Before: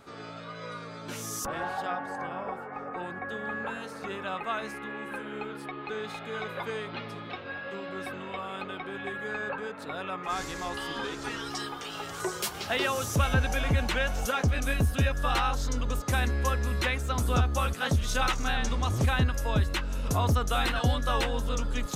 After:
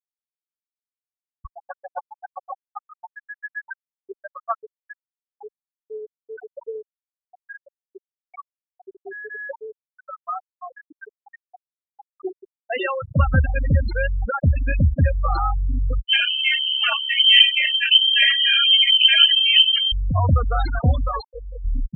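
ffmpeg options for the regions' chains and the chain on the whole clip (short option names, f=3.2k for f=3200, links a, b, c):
-filter_complex "[0:a]asettb=1/sr,asplit=3[a][b][c];[a]atrim=end=1.184[d];[b]atrim=start=1.18:end=5.02,asetpts=PTS-STARTPTS,afade=t=in:d=0.004:c=qsin,afade=t=out:st=3.836:d=0.004:c=qsin,equalizer=f=210:t=o:w=0.75:g=-13.5,acontrast=25,aeval=exprs='val(0)*pow(10,-24*(0.5-0.5*cos(2*PI*7.5*n/s))/20)':c=same[e];[c]atrim=start=5.016[f];[d][e]acrossfade=d=0.004:c1=hsin:c2=qsin[g];[g][f]acrossfade=d=0.004:c1=qsin:c2=hsin,asettb=1/sr,asplit=3[h][i][j];[h]atrim=end=16.064[k];[i]atrim=start=16.06:end=19.92,asetpts=PTS-STARTPTS,afade=t=in:d=0.004:c=qsin,afade=t=out:st=3.856:d=0.004:c=qsin,aecho=1:1:20|50|95|162.5|263.8:0.631|0.398|0.251|0.158|0.1,atrim=end_sample=170226,lowpass=f=2.7k:t=q:w=0.5098,lowpass=f=2.7k:t=q:w=0.6013,lowpass=f=2.7k:t=q:w=0.9,lowpass=f=2.7k:t=q:w=2.563,afreqshift=-3200,adynamicequalizer=threshold=0.0158:dfrequency=2100:dqfactor=0.7:tfrequency=2100:tqfactor=0.7:attack=5:release=100:ratio=0.375:range=2.5:mode=boostabove:tftype=highshelf[l];[j]atrim=start=19.916[m];[k][l]acrossfade=d=0.004:c1=hsin:c2=qsin[n];[n][m]acrossfade=d=0.004:c1=qsin:c2=hsin,asettb=1/sr,asplit=3[o][p][q];[o]atrim=end=21.084[r];[p]atrim=start=21.08:end=21.65,asetpts=PTS-STARTPTS,afade=t=in:d=0.004:c=qsin,afade=t=out:st=0.566:d=0.004:c=qsin,lowshelf=f=270:g=-10,bandreject=f=60:t=h:w=6,bandreject=f=120:t=h:w=6,bandreject=f=180:t=h:w=6,bandreject=f=240:t=h:w=6,bandreject=f=300:t=h:w=6,bandreject=f=360:t=h:w=6,bandreject=f=420:t=h:w=6,bandreject=f=480:t=h:w=6,bandreject=f=540:t=h:w=6[s];[q]atrim=start=21.646[t];[r][s]acrossfade=d=0.004:c1=hsin:c2=qsin[u];[u][t]acrossfade=d=0.004:c1=qsin:c2=hsin,bandreject=f=60:t=h:w=6,bandreject=f=120:t=h:w=6,bandreject=f=180:t=h:w=6,bandreject=f=240:t=h:w=6,bandreject=f=300:t=h:w=6,bandreject=f=360:t=h:w=6,bandreject=f=420:t=h:w=6,afftfilt=real='re*gte(hypot(re,im),0.141)':imag='im*gte(hypot(re,im),0.141)':win_size=1024:overlap=0.75,equalizer=f=63:w=0.33:g=3.5,volume=6dB"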